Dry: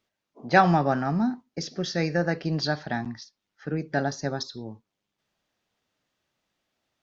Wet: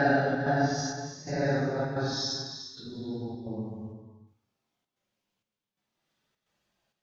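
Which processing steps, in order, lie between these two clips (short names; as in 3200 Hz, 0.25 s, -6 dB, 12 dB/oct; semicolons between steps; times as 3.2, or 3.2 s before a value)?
Paulstretch 4.9×, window 0.10 s, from 3.96; step gate "xxx.xxxx...xx" 130 bpm -12 dB; non-linear reverb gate 0.44 s flat, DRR 6.5 dB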